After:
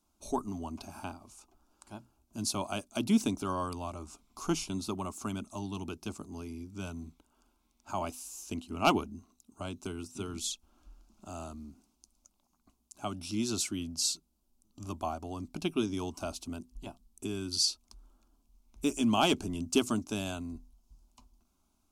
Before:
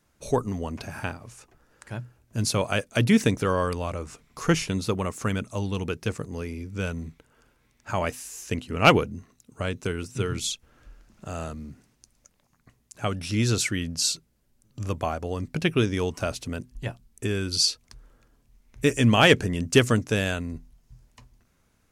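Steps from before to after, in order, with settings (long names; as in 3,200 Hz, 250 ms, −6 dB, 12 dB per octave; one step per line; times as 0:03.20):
phaser with its sweep stopped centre 490 Hz, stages 6
level −4.5 dB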